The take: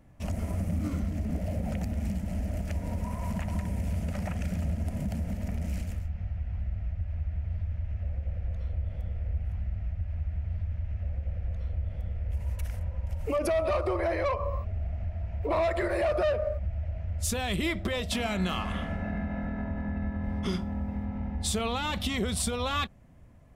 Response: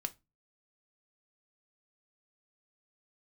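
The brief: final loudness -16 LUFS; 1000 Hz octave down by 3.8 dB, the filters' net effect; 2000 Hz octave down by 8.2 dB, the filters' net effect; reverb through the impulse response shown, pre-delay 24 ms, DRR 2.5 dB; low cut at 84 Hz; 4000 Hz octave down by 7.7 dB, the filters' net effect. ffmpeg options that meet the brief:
-filter_complex "[0:a]highpass=84,equalizer=f=1k:t=o:g=-3,equalizer=f=2k:t=o:g=-7.5,equalizer=f=4k:t=o:g=-7,asplit=2[a][b];[1:a]atrim=start_sample=2205,adelay=24[c];[b][c]afir=irnorm=-1:irlink=0,volume=-2dB[d];[a][d]amix=inputs=2:normalize=0,volume=16.5dB"

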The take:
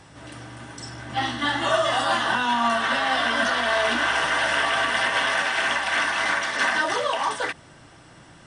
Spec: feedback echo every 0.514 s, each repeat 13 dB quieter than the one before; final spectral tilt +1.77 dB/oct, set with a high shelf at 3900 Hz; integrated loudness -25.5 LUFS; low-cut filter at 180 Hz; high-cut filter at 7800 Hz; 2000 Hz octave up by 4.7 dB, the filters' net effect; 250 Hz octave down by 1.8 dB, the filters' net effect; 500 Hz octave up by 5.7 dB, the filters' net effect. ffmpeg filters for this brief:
-af "highpass=180,lowpass=7.8k,equalizer=f=250:t=o:g=-3.5,equalizer=f=500:t=o:g=8.5,equalizer=f=2k:t=o:g=6.5,highshelf=f=3.9k:g=-4.5,aecho=1:1:514|1028|1542:0.224|0.0493|0.0108,volume=-7.5dB"

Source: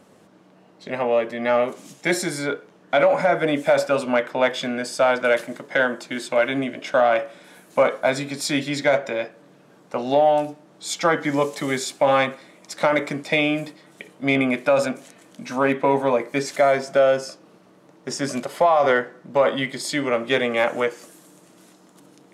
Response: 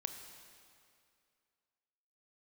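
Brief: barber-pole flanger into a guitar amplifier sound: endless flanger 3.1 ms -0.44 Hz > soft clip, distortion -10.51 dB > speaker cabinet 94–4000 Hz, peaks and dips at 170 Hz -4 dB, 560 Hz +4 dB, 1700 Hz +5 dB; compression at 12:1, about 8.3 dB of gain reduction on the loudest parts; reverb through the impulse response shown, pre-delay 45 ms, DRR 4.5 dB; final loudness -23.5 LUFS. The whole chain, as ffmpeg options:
-filter_complex "[0:a]acompressor=threshold=-21dB:ratio=12,asplit=2[a][b];[1:a]atrim=start_sample=2205,adelay=45[c];[b][c]afir=irnorm=-1:irlink=0,volume=-3.5dB[d];[a][d]amix=inputs=2:normalize=0,asplit=2[e][f];[f]adelay=3.1,afreqshift=-0.44[g];[e][g]amix=inputs=2:normalize=1,asoftclip=threshold=-27dB,highpass=94,equalizer=f=170:t=q:w=4:g=-4,equalizer=f=560:t=q:w=4:g=4,equalizer=f=1.7k:t=q:w=4:g=5,lowpass=f=4k:w=0.5412,lowpass=f=4k:w=1.3066,volume=8dB"

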